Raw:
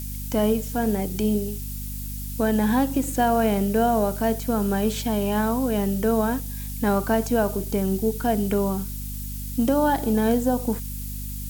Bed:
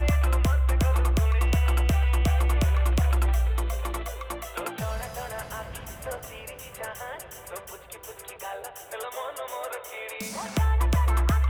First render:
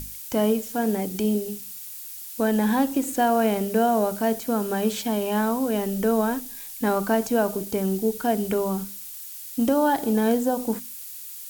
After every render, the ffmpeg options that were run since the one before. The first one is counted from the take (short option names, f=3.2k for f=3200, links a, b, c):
-af "bandreject=f=50:t=h:w=6,bandreject=f=100:t=h:w=6,bandreject=f=150:t=h:w=6,bandreject=f=200:t=h:w=6,bandreject=f=250:t=h:w=6"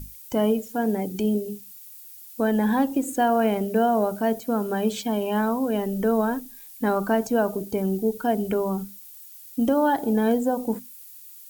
-af "afftdn=nr=10:nf=-38"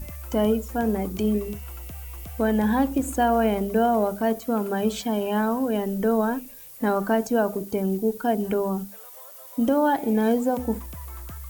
-filter_complex "[1:a]volume=-16.5dB[a];[0:a][a]amix=inputs=2:normalize=0"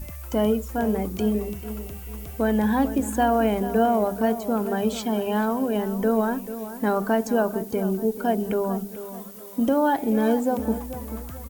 -filter_complex "[0:a]asplit=2[a][b];[b]adelay=438,lowpass=f=2k:p=1,volume=-12dB,asplit=2[c][d];[d]adelay=438,lowpass=f=2k:p=1,volume=0.4,asplit=2[e][f];[f]adelay=438,lowpass=f=2k:p=1,volume=0.4,asplit=2[g][h];[h]adelay=438,lowpass=f=2k:p=1,volume=0.4[i];[a][c][e][g][i]amix=inputs=5:normalize=0"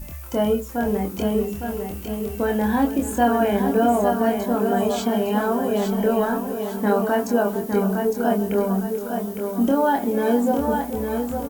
-filter_complex "[0:a]asplit=2[a][b];[b]adelay=25,volume=-3.5dB[c];[a][c]amix=inputs=2:normalize=0,aecho=1:1:858|1716|2574|3432:0.501|0.185|0.0686|0.0254"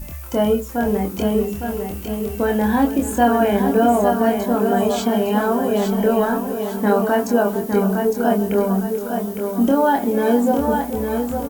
-af "volume=3dB"